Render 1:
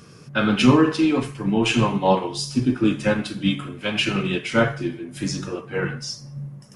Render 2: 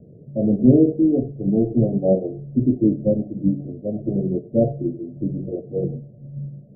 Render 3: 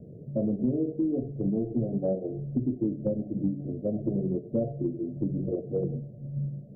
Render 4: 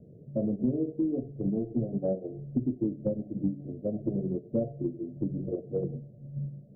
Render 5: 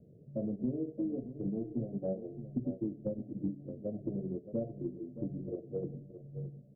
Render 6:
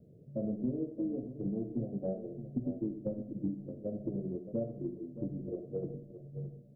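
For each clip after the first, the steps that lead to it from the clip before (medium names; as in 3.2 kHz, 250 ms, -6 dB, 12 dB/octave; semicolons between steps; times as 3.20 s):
steep low-pass 680 Hz 96 dB/octave; trim +2 dB
compression 6:1, threshold -25 dBFS, peak gain reduction 17 dB
upward expansion 1.5:1, over -35 dBFS
delay 620 ms -12 dB; trim -6.5 dB
reverberation RT60 0.55 s, pre-delay 15 ms, DRR 9.5 dB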